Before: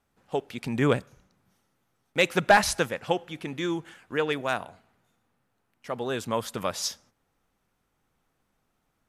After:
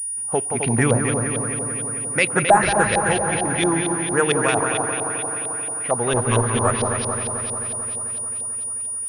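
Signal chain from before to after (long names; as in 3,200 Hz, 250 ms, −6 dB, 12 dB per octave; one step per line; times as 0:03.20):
0:06.13–0:06.81: lower of the sound and its delayed copy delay 8.1 ms
parametric band 110 Hz +8.5 dB 0.51 octaves
brickwall limiter −17 dBFS, peak gain reduction 8.5 dB
on a send: echo machine with several playback heads 88 ms, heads second and third, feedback 71%, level −6.5 dB
on the sum: auto-filter low-pass saw up 4.4 Hz 710–3,700 Hz
switching amplifier with a slow clock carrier 9,600 Hz
level +6.5 dB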